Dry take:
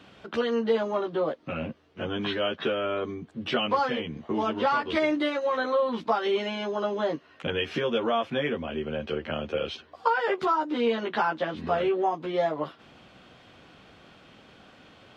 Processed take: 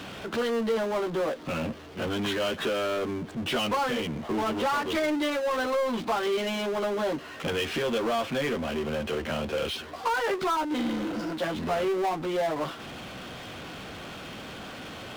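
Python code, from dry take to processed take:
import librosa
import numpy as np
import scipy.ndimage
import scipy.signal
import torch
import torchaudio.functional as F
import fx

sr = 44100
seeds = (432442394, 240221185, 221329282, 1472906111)

y = fx.spec_repair(x, sr, seeds[0], start_s=10.8, length_s=0.5, low_hz=260.0, high_hz=4500.0, source='both')
y = fx.power_curve(y, sr, exponent=0.5)
y = F.gain(torch.from_numpy(y), -8.0).numpy()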